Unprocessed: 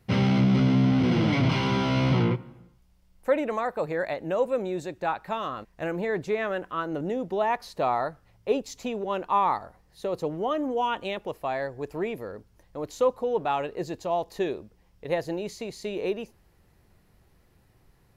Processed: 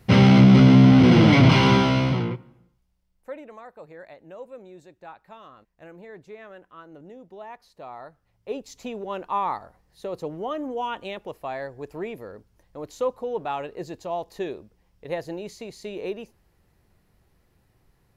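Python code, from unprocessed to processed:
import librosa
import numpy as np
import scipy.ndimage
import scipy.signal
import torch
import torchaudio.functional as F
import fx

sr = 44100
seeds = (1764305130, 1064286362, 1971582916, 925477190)

y = fx.gain(x, sr, db=fx.line((1.72, 8.5), (2.26, -3.5), (3.52, -15.0), (7.87, -15.0), (8.82, -2.5)))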